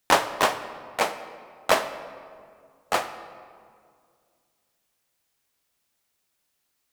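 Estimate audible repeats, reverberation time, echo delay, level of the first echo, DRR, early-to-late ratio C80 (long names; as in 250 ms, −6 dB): no echo audible, 2.2 s, no echo audible, no echo audible, 10.0 dB, 12.5 dB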